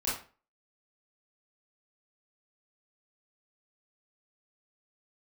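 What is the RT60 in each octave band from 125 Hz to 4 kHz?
0.35, 0.40, 0.40, 0.35, 0.35, 0.30 s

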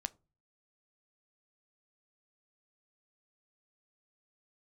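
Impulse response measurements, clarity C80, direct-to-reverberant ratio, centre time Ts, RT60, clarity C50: 31.5 dB, 13.0 dB, 2 ms, 0.30 s, 25.5 dB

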